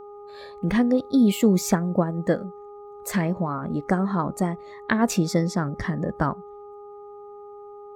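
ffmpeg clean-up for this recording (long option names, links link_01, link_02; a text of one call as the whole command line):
ffmpeg -i in.wav -af "bandreject=frequency=410.1:width_type=h:width=4,bandreject=frequency=820.2:width_type=h:width=4,bandreject=frequency=1230.3:width_type=h:width=4" out.wav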